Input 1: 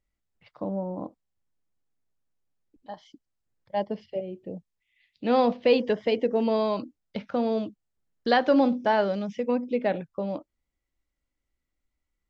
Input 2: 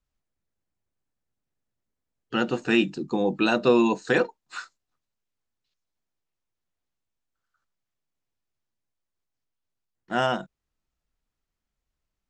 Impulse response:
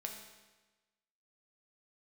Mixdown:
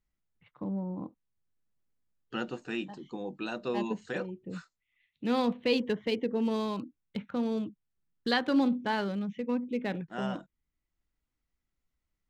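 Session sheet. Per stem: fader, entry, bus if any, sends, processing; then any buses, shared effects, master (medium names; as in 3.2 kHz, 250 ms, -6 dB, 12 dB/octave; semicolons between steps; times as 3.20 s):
-3.0 dB, 0.00 s, no send, local Wiener filter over 9 samples; fifteen-band graphic EQ 160 Hz +4 dB, 630 Hz -12 dB, 4 kHz +5 dB
-5.0 dB, 0.00 s, no send, auto duck -9 dB, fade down 0.70 s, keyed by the first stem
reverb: none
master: none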